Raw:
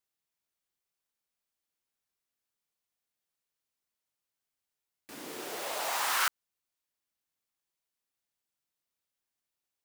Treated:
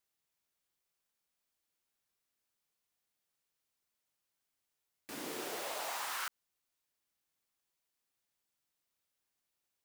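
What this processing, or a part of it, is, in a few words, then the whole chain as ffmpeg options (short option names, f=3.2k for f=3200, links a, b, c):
de-esser from a sidechain: -filter_complex "[0:a]asplit=2[a][b];[b]highpass=4.1k,apad=whole_len=434239[c];[a][c]sidechaincompress=threshold=-44dB:ratio=4:attack=0.58:release=29,volume=2dB"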